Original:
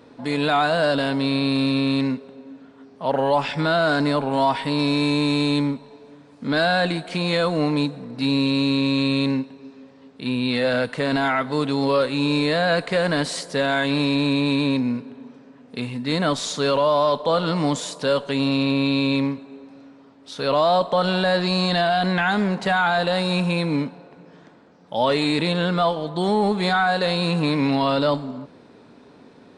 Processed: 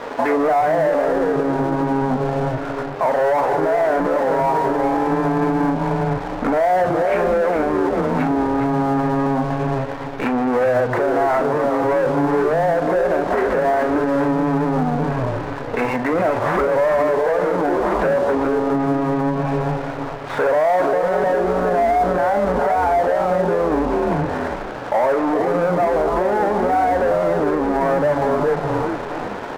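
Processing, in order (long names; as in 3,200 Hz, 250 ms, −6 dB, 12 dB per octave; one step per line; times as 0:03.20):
stylus tracing distortion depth 0.15 ms
treble cut that deepens with the level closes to 640 Hz, closed at −20 dBFS
mid-hump overdrive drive 25 dB, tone 1,500 Hz, clips at −12 dBFS
transistor ladder low-pass 2,400 Hz, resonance 40%
parametric band 720 Hz +10 dB 2 octaves
double-tracking delay 39 ms −10 dB
echo with shifted repeats 410 ms, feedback 31%, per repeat −130 Hz, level −4.5 dB
downward compressor 3 to 1, threshold −22 dBFS, peak gain reduction 8 dB
low-shelf EQ 230 Hz −6 dB
dead-zone distortion −44.5 dBFS
boost into a limiter +19.5 dB
level −9 dB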